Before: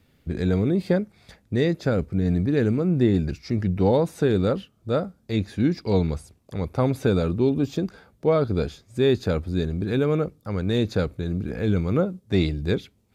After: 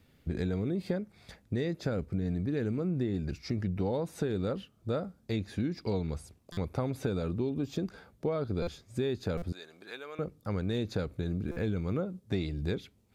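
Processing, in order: compression, threshold -26 dBFS, peak gain reduction 11.5 dB; 9.52–10.19 s: high-pass 890 Hz 12 dB/octave; buffer glitch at 6.52/8.62/9.37/11.51 s, samples 256, times 8; trim -2.5 dB

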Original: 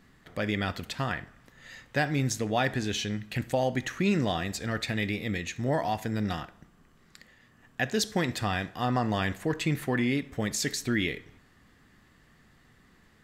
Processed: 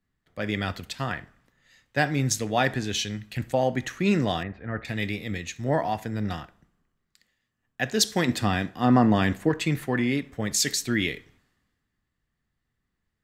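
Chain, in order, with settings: 4.43–4.85 s: low-pass 2.1 kHz 24 dB/octave; 8.27–9.49 s: peaking EQ 250 Hz +7 dB 1.1 oct; three bands expanded up and down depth 70%; trim +2 dB

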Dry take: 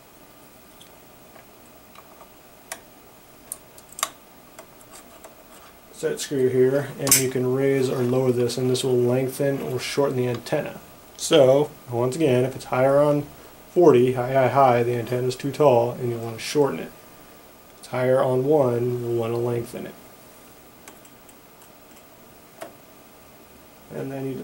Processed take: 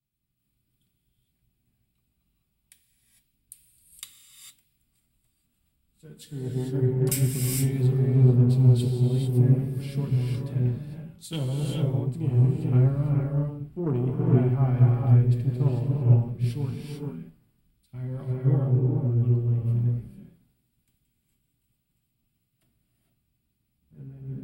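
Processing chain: FFT filter 160 Hz 0 dB, 540 Hz -27 dB, 2.9 kHz -22 dB; Chebyshev shaper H 5 -22 dB, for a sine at -18 dBFS; peaking EQ 6.2 kHz -14.5 dB 0.38 oct; gated-style reverb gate 480 ms rising, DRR -1.5 dB; three bands expanded up and down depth 100%; trim +1.5 dB

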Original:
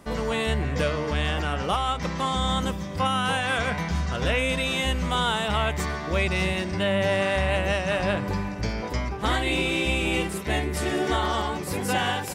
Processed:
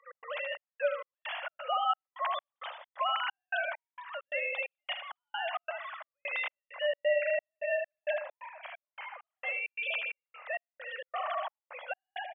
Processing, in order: formants replaced by sine waves; steep high-pass 540 Hz 96 dB/octave; on a send: feedback delay 77 ms, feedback 30%, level -8 dB; on the sum: trance gate "x.xxx..xx..x" 132 bpm -60 dB; trim -8.5 dB

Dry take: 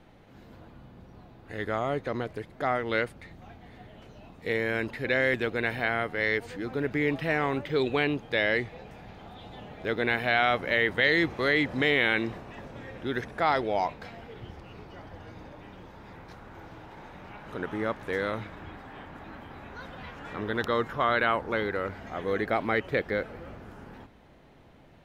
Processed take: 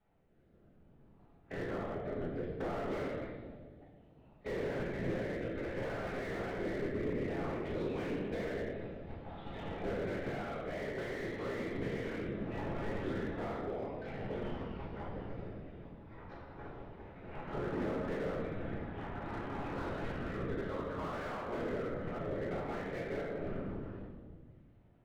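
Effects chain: 5.24–7.54 s: chunks repeated in reverse 314 ms, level -3 dB; gate -44 dBFS, range -20 dB; low-pass 2.6 kHz 12 dB/octave; compression 16:1, threshold -38 dBFS, peak gain reduction 19 dB; rotary cabinet horn 0.6 Hz; whisper effect; reverberation RT60 1.6 s, pre-delay 5 ms, DRR -5.5 dB; slew-rate limiter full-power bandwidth 11 Hz

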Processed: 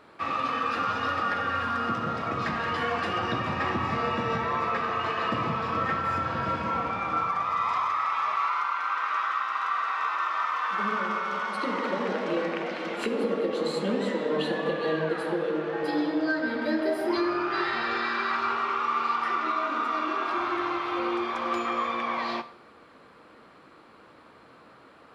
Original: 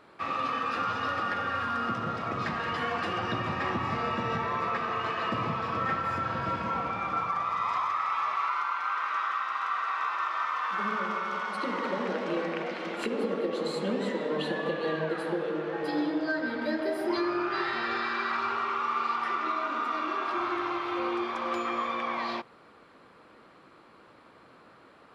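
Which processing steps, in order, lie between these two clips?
on a send at -10.5 dB: vibrato 2.3 Hz 11 cents + reverberation, pre-delay 3 ms; on the sum: trim +2 dB

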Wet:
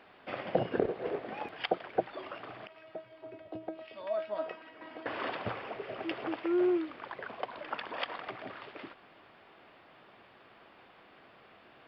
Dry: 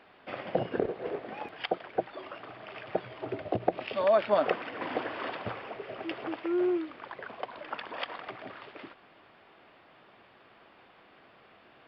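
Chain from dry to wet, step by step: 2.67–5.06 s: feedback comb 320 Hz, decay 0.26 s, harmonics all, mix 90%

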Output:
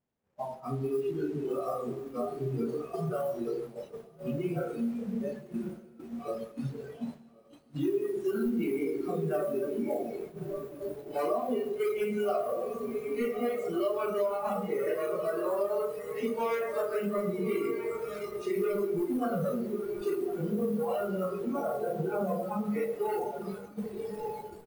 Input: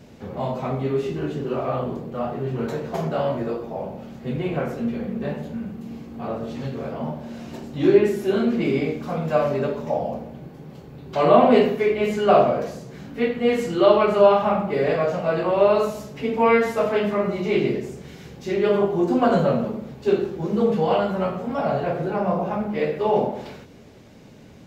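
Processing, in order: one-bit delta coder 64 kbps, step -27 dBFS; in parallel at -5.5 dB: integer overflow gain 16 dB; on the sum: treble shelf 2.9 kHz -11 dB; echo that smears into a reverb 1236 ms, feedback 46%, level -7 dB; compression 6:1, threshold -20 dBFS, peak gain reduction 10.5 dB; bit crusher 7-bit; spectral noise reduction 17 dB; expander -30 dBFS; on a send at -15.5 dB: delay 958 ms -7.5 dB + reverberation RT60 0.95 s, pre-delay 92 ms; on the sum: trim -6 dB

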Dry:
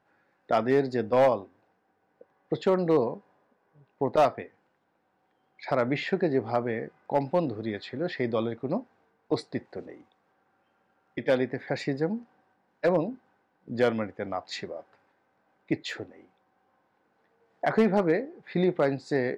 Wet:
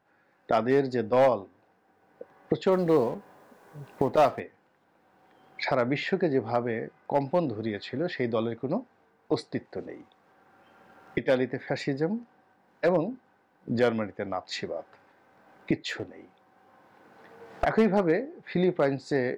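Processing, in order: 2.72–4.40 s: companding laws mixed up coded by mu; recorder AGC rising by 11 dB/s; 15.93–17.65 s: one-sided clip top -29.5 dBFS

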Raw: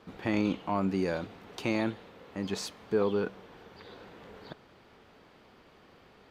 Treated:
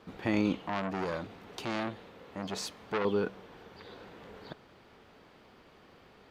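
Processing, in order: 0.61–3.05 s: transformer saturation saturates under 1.6 kHz

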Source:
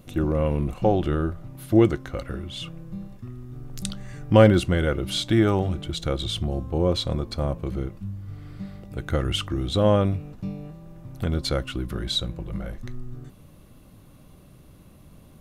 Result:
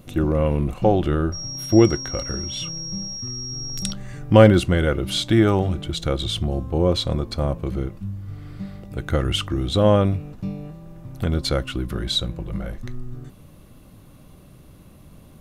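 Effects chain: 1.32–3.91 s: whistle 5.6 kHz -33 dBFS; trim +3 dB

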